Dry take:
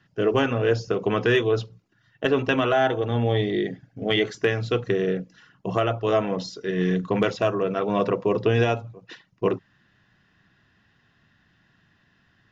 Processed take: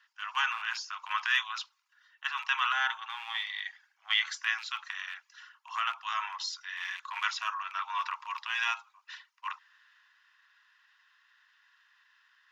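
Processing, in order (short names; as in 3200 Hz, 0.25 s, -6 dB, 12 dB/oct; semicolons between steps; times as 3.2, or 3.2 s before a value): rattling part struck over -25 dBFS, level -32 dBFS; transient shaper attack -6 dB, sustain +2 dB; steep high-pass 920 Hz 72 dB/oct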